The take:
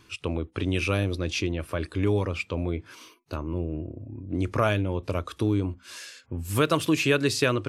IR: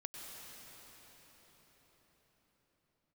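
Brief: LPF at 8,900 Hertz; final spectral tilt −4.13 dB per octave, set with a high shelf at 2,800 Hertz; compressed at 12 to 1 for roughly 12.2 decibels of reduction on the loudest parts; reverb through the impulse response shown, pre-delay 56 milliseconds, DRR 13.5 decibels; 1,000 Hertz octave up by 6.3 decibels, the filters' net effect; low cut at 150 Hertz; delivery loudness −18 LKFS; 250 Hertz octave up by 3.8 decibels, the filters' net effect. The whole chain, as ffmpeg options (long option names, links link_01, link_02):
-filter_complex "[0:a]highpass=150,lowpass=8900,equalizer=frequency=250:width_type=o:gain=5,equalizer=frequency=1000:width_type=o:gain=6.5,highshelf=frequency=2800:gain=8,acompressor=threshold=-26dB:ratio=12,asplit=2[link_01][link_02];[1:a]atrim=start_sample=2205,adelay=56[link_03];[link_02][link_03]afir=irnorm=-1:irlink=0,volume=-11.5dB[link_04];[link_01][link_04]amix=inputs=2:normalize=0,volume=14dB"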